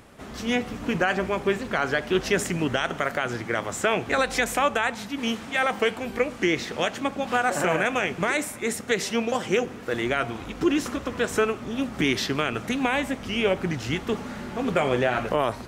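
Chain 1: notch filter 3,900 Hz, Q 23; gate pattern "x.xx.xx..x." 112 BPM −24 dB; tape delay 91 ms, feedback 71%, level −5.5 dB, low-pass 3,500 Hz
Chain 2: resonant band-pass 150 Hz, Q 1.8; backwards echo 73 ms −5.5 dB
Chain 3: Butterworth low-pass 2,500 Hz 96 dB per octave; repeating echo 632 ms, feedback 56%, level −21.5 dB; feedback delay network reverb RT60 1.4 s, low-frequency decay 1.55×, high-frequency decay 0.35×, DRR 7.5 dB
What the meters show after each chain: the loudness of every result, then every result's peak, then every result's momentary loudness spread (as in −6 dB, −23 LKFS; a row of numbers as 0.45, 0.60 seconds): −27.0, −36.0, −25.0 LKFS; −7.5, −18.5, −8.5 dBFS; 7, 7, 5 LU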